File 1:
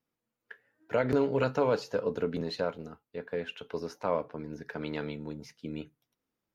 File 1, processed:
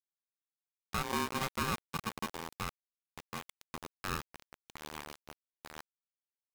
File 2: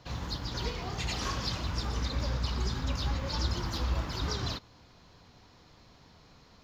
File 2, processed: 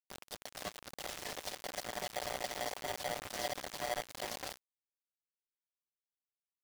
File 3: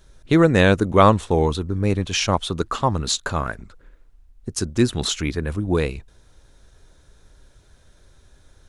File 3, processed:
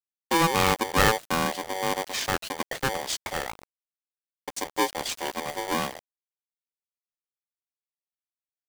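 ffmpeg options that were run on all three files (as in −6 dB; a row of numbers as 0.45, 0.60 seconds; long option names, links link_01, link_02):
-af "aresample=22050,aresample=44100,aeval=exprs='val(0)*gte(abs(val(0)),0.0355)':channel_layout=same,aeval=exprs='val(0)*sgn(sin(2*PI*660*n/s))':channel_layout=same,volume=-7.5dB"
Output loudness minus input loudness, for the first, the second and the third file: −6.0, −7.0, −6.5 LU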